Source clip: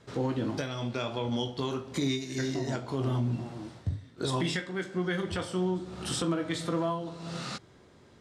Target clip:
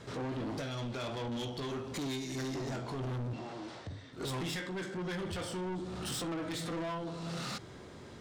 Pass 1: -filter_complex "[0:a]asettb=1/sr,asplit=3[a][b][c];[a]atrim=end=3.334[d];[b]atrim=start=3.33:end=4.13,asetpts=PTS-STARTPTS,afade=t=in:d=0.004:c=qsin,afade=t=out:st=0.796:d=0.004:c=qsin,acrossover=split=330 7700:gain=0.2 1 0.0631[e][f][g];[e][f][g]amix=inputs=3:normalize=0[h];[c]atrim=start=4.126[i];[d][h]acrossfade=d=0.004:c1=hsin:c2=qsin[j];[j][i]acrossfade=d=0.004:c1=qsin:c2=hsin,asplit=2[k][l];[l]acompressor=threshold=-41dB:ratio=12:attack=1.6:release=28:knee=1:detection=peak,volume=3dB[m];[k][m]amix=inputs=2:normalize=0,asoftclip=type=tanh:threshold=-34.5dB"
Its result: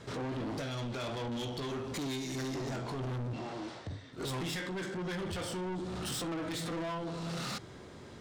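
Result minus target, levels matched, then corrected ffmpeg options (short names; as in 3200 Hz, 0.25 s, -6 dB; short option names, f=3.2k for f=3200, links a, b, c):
compressor: peak gain reduction -9.5 dB
-filter_complex "[0:a]asettb=1/sr,asplit=3[a][b][c];[a]atrim=end=3.334[d];[b]atrim=start=3.33:end=4.13,asetpts=PTS-STARTPTS,afade=t=in:d=0.004:c=qsin,afade=t=out:st=0.796:d=0.004:c=qsin,acrossover=split=330 7700:gain=0.2 1 0.0631[e][f][g];[e][f][g]amix=inputs=3:normalize=0[h];[c]atrim=start=4.126[i];[d][h]acrossfade=d=0.004:c1=hsin:c2=qsin[j];[j][i]acrossfade=d=0.004:c1=qsin:c2=hsin,asplit=2[k][l];[l]acompressor=threshold=-51.5dB:ratio=12:attack=1.6:release=28:knee=1:detection=peak,volume=3dB[m];[k][m]amix=inputs=2:normalize=0,asoftclip=type=tanh:threshold=-34.5dB"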